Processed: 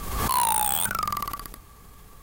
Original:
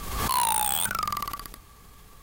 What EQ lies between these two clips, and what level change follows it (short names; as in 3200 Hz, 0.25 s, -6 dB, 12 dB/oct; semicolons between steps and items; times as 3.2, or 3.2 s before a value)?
bell 3700 Hz -4 dB 2.2 oct; +2.5 dB